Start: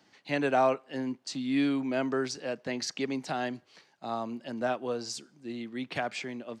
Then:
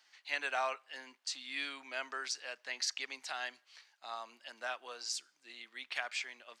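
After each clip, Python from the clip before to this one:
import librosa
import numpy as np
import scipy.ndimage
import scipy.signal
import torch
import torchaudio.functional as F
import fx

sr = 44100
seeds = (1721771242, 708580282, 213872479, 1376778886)

y = scipy.signal.sosfilt(scipy.signal.butter(2, 1400.0, 'highpass', fs=sr, output='sos'), x)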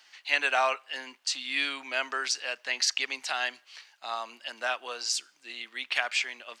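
y = fx.peak_eq(x, sr, hz=2800.0, db=4.0, octaves=0.34)
y = y * 10.0 ** (9.0 / 20.0)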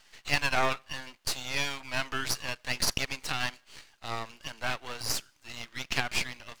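y = np.maximum(x, 0.0)
y = y * 10.0 ** (2.5 / 20.0)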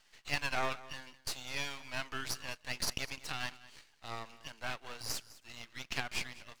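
y = x + 10.0 ** (-18.5 / 20.0) * np.pad(x, (int(205 * sr / 1000.0), 0))[:len(x)]
y = y * 10.0 ** (-7.5 / 20.0)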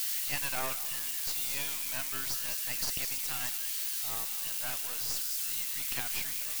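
y = x + 0.5 * 10.0 ** (-21.0 / 20.0) * np.diff(np.sign(x), prepend=np.sign(x[:1]))
y = y * 10.0 ** (-2.5 / 20.0)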